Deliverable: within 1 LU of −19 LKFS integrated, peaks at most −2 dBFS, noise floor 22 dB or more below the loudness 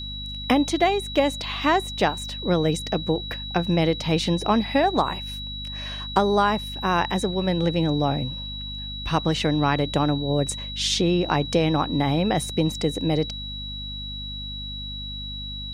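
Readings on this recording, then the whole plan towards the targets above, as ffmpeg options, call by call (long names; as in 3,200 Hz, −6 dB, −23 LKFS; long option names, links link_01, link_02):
mains hum 50 Hz; hum harmonics up to 250 Hz; level of the hum −34 dBFS; interfering tone 3,900 Hz; level of the tone −33 dBFS; integrated loudness −24.0 LKFS; sample peak −5.5 dBFS; target loudness −19.0 LKFS
→ -af "bandreject=frequency=50:width_type=h:width=6,bandreject=frequency=100:width_type=h:width=6,bandreject=frequency=150:width_type=h:width=6,bandreject=frequency=200:width_type=h:width=6,bandreject=frequency=250:width_type=h:width=6"
-af "bandreject=frequency=3900:width=30"
-af "volume=5dB,alimiter=limit=-2dB:level=0:latency=1"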